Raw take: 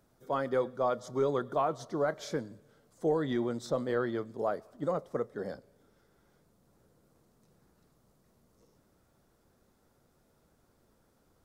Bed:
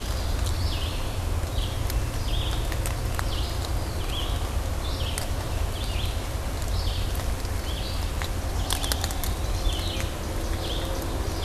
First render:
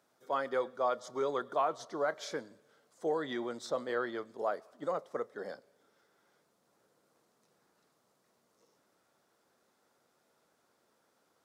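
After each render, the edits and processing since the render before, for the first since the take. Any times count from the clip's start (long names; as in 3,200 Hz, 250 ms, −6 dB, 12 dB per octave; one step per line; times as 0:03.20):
meter weighting curve A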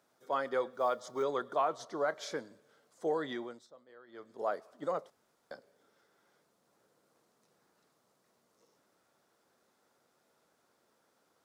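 0:00.73–0:01.23: log-companded quantiser 8 bits
0:03.25–0:04.50: duck −23 dB, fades 0.43 s
0:05.10–0:05.51: fill with room tone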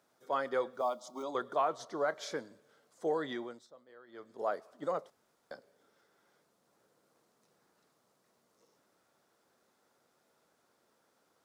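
0:00.81–0:01.35: phaser with its sweep stopped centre 450 Hz, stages 6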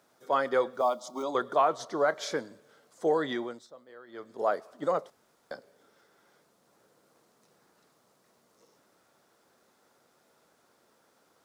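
level +6.5 dB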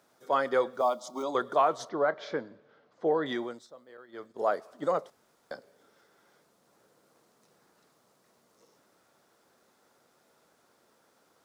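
0:01.89–0:03.26: high-frequency loss of the air 260 metres
0:03.97–0:04.55: downward expander −50 dBFS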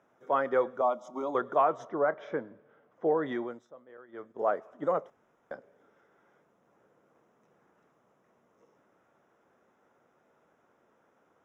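moving average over 10 samples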